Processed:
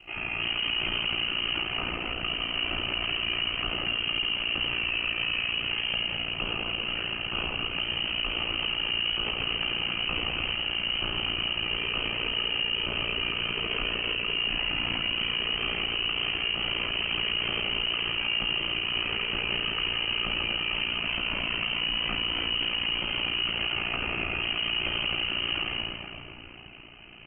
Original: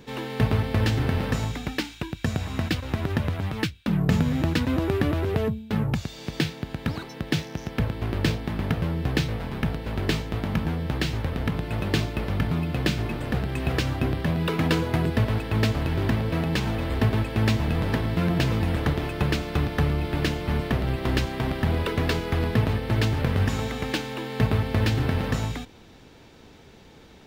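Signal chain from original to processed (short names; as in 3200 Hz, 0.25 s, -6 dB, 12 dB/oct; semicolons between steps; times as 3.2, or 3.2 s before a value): bell 580 Hz +8 dB 0.26 oct; inverted band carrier 3000 Hz; low shelf 420 Hz +9 dB; shoebox room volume 200 m³, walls hard, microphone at 0.87 m; limiter -14.5 dBFS, peak gain reduction 11 dB; ring modulator 29 Hz; gain -3.5 dB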